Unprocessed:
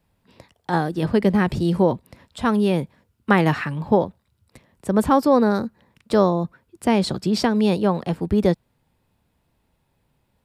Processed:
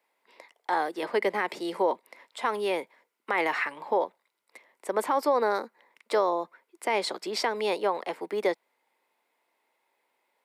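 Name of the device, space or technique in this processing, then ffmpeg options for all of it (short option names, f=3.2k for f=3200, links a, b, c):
laptop speaker: -af "highpass=f=380:w=0.5412,highpass=f=380:w=1.3066,equalizer=f=960:t=o:w=0.53:g=5,equalizer=f=2.1k:t=o:w=0.27:g=11.5,alimiter=limit=-11.5dB:level=0:latency=1:release=45,volume=-4dB"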